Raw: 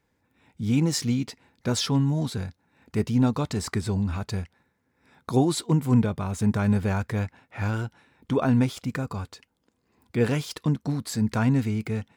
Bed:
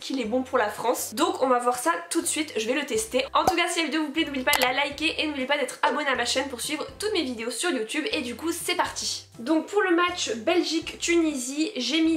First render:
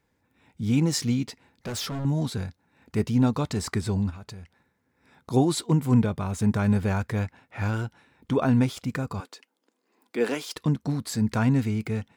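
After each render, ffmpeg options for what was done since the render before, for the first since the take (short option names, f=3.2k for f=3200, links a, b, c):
-filter_complex "[0:a]asettb=1/sr,asplit=3[a][b][c];[a]atrim=end=1.264[d];[b]atrim=start=1.26:end=2.05,asetpts=PTS-STARTPTS,afade=t=in:d=0.004:c=qsin,afade=t=out:st=0.786:d=0.004:c=qsin,volume=29.5dB,asoftclip=hard,volume=-29.5dB[e];[c]atrim=start=2.046[f];[d][e]acrossfade=d=0.004:c1=hsin:c2=qsin[g];[g][f]acrossfade=d=0.004:c1=qsin:c2=hsin,asplit=3[h][i][j];[h]afade=t=out:st=4.09:d=0.02[k];[i]acompressor=threshold=-37dB:ratio=10:attack=3.2:release=140:knee=1:detection=peak,afade=t=in:st=4.09:d=0.02,afade=t=out:st=5.3:d=0.02[l];[j]afade=t=in:st=5.3:d=0.02[m];[k][l][m]amix=inputs=3:normalize=0,asettb=1/sr,asplit=3[n][o][p];[n]atrim=end=9.204[q];[o]atrim=start=9.2:end=10.56,asetpts=PTS-STARTPTS,afade=t=in:d=0.004:c=qsin,afade=t=out:st=1.356:d=0.004:c=qsin,highpass=f=260:w=0.5412,highpass=f=260:w=1.3066[r];[p]atrim=start=10.556[s];[q][r]acrossfade=d=0.004:c1=hsin:c2=qsin[t];[t][s]acrossfade=d=0.004:c1=qsin:c2=hsin"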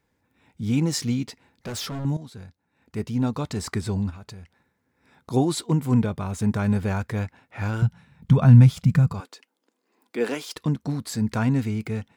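-filter_complex "[0:a]asettb=1/sr,asplit=3[a][b][c];[a]atrim=end=7.824[d];[b]atrim=start=7.82:end=9.13,asetpts=PTS-STARTPTS,afade=t=in:d=0.004:c=qsin,afade=t=out:st=1.306:d=0.004:c=qsin,lowshelf=f=230:t=q:w=3:g=10[e];[c]atrim=start=9.126[f];[d][e]acrossfade=d=0.004:c1=hsin:c2=qsin[g];[g][f]acrossfade=d=0.004:c1=qsin:c2=hsin,asplit=2[h][i];[h]atrim=end=2.17,asetpts=PTS-STARTPTS,afade=t=out:st=2.166:d=0.004:c=hsin:silence=0.188365[j];[i]atrim=start=2.17,asetpts=PTS-STARTPTS,afade=t=in:d=1.56:silence=0.188365[k];[j][k]concat=n=2:v=0:a=1"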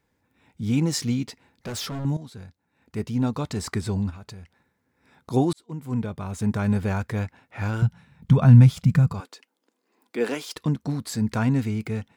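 -filter_complex "[0:a]asplit=2[a][b];[a]atrim=end=5.53,asetpts=PTS-STARTPTS,afade=t=out:st=5.526:d=0.004:c=hsin[c];[b]atrim=start=5.53,asetpts=PTS-STARTPTS,afade=t=in:d=1.43:c=qsin[d];[c][d]concat=n=2:v=0:a=1"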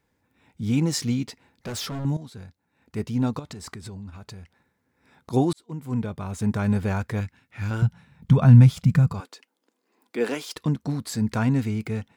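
-filter_complex "[0:a]asettb=1/sr,asplit=3[a][b][c];[a]atrim=end=3.394[d];[b]atrim=start=3.39:end=5.33,asetpts=PTS-STARTPTS,afade=t=in:d=0.004:c=qsin,afade=t=out:st=1.936:d=0.004:c=qsin,acompressor=threshold=-34dB:ratio=10:attack=3.2:release=140:knee=1:detection=peak[e];[c]atrim=start=5.326[f];[d][e]acrossfade=d=0.004:c1=hsin:c2=qsin[g];[g][f]acrossfade=d=0.004:c1=qsin:c2=hsin,asettb=1/sr,asplit=3[h][i][j];[h]atrim=end=7.204[k];[i]atrim=start=7.2:end=7.71,asetpts=PTS-STARTPTS,afade=t=in:d=0.004:c=qsin,afade=t=out:st=0.506:d=0.004:c=qsin,equalizer=f=660:t=o:w=1.8:g=-13[l];[j]atrim=start=7.706[m];[k][l]acrossfade=d=0.004:c1=hsin:c2=qsin[n];[n][m]acrossfade=d=0.004:c1=qsin:c2=hsin"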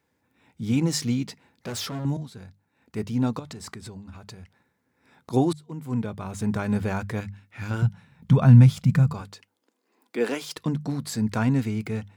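-af "highpass=77,bandreject=f=50:t=h:w=6,bandreject=f=100:t=h:w=6,bandreject=f=150:t=h:w=6,bandreject=f=200:t=h:w=6"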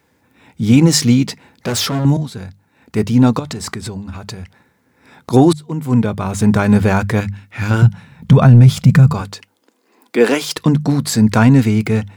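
-af "acontrast=57,alimiter=level_in=7.5dB:limit=-1dB:release=50:level=0:latency=1"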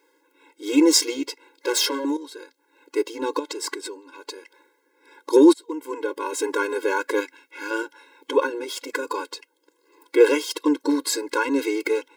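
-af "tremolo=f=1.1:d=0.35,afftfilt=real='re*eq(mod(floor(b*sr/1024/280),2),1)':imag='im*eq(mod(floor(b*sr/1024/280),2),1)':win_size=1024:overlap=0.75"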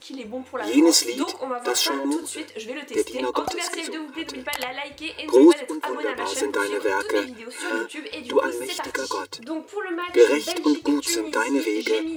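-filter_complex "[1:a]volume=-7dB[a];[0:a][a]amix=inputs=2:normalize=0"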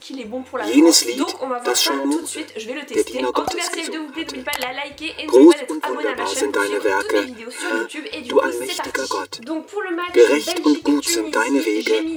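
-af "volume=4.5dB,alimiter=limit=-1dB:level=0:latency=1"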